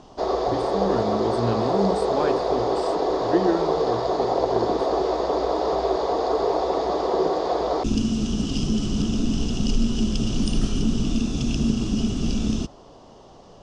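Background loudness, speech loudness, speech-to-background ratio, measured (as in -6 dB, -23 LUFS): -24.0 LUFS, -28.0 LUFS, -4.0 dB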